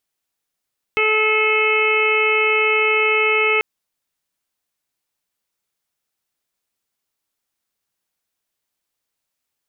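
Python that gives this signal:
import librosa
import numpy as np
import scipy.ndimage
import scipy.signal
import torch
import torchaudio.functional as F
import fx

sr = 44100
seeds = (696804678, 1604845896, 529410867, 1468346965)

y = fx.additive_steady(sr, length_s=2.64, hz=433.0, level_db=-19.5, upper_db=(-10.0, -3.5, -18.5, 1, 0.0, -11))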